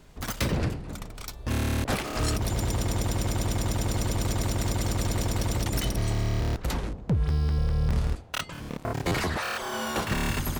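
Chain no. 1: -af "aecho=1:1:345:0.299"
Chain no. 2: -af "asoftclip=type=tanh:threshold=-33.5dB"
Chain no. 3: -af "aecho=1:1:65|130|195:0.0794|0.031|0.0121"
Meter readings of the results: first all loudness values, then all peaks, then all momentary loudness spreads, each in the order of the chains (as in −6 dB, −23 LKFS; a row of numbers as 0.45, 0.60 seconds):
−28.5, −37.0, −29.0 LKFS; −15.0, −33.5, −16.0 dBFS; 6, 4, 7 LU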